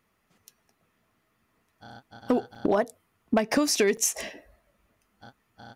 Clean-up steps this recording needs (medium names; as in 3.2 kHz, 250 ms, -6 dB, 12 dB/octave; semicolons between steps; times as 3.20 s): clip repair -14 dBFS; interpolate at 2.55/3.97 s, 5.4 ms